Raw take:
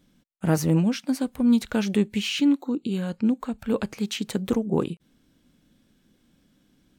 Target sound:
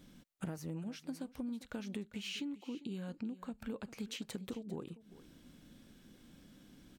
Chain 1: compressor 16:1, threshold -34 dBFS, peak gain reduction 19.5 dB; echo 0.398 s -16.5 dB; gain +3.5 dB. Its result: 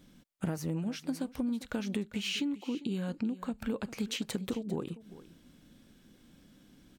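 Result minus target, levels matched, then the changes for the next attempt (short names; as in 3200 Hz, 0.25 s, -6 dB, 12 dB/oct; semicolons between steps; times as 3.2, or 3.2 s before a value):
compressor: peak gain reduction -8 dB
change: compressor 16:1, threshold -42.5 dBFS, peak gain reduction 27.5 dB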